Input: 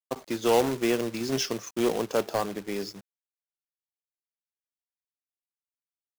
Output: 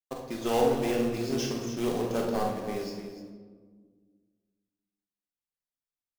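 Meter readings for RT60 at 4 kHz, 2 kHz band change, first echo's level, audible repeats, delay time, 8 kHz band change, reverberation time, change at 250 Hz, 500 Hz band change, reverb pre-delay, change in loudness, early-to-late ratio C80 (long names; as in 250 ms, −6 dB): 1.0 s, −4.5 dB, −6.0 dB, 2, 43 ms, −5.0 dB, 1.6 s, −0.5 dB, −1.5 dB, 3 ms, −2.0 dB, 4.5 dB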